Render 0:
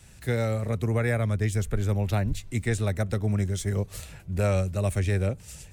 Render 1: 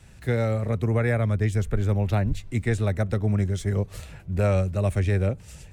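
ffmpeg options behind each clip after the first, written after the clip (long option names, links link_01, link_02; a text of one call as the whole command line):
ffmpeg -i in.wav -af "highshelf=frequency=4300:gain=-10,volume=2.5dB" out.wav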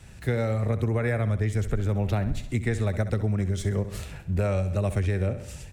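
ffmpeg -i in.wav -af "aecho=1:1:65|130|195|260|325:0.211|0.104|0.0507|0.0249|0.0122,acompressor=threshold=-24dB:ratio=6,volume=2.5dB" out.wav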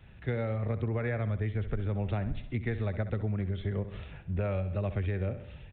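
ffmpeg -i in.wav -af "aresample=8000,aresample=44100,volume=-6dB" out.wav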